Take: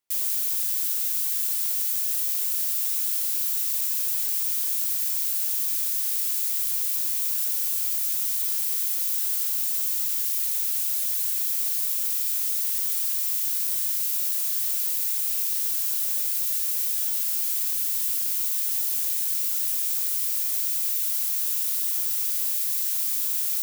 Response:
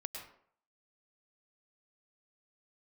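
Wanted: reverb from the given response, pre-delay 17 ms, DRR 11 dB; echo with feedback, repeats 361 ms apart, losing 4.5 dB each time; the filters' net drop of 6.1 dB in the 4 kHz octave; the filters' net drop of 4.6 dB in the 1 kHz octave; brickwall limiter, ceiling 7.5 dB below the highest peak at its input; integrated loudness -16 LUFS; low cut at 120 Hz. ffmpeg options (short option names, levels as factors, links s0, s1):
-filter_complex "[0:a]highpass=120,equalizer=f=1000:t=o:g=-5.5,equalizer=f=4000:t=o:g=-8,alimiter=limit=0.112:level=0:latency=1,aecho=1:1:361|722|1083|1444|1805|2166|2527|2888|3249:0.596|0.357|0.214|0.129|0.0772|0.0463|0.0278|0.0167|0.01,asplit=2[s0][s1];[1:a]atrim=start_sample=2205,adelay=17[s2];[s1][s2]afir=irnorm=-1:irlink=0,volume=0.335[s3];[s0][s3]amix=inputs=2:normalize=0,volume=2.37"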